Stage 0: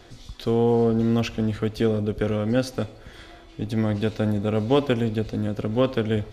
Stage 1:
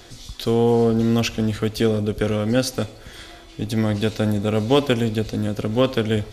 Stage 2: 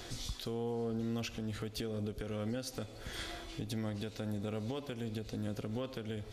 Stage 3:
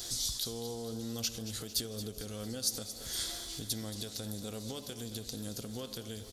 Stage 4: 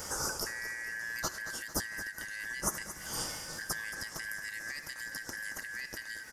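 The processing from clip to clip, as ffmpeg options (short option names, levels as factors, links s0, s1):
-af "highshelf=f=3900:g=11,volume=1.33"
-af "acompressor=threshold=0.0501:ratio=6,alimiter=level_in=1.33:limit=0.0631:level=0:latency=1:release=411,volume=0.75,volume=0.75"
-filter_complex "[0:a]aexciter=amount=4.5:drive=7.7:freq=3600,asplit=2[s0][s1];[s1]aecho=0:1:225|450|675|900|1125|1350:0.237|0.135|0.077|0.0439|0.025|0.0143[s2];[s0][s2]amix=inputs=2:normalize=0,volume=0.668"
-af "afftfilt=real='real(if(lt(b,272),68*(eq(floor(b/68),0)*3+eq(floor(b/68),1)*0+eq(floor(b/68),2)*1+eq(floor(b/68),3)*2)+mod(b,68),b),0)':imag='imag(if(lt(b,272),68*(eq(floor(b/68),0)*3+eq(floor(b/68),1)*0+eq(floor(b/68),2)*1+eq(floor(b/68),3)*2)+mod(b,68),b),0)':win_size=2048:overlap=0.75"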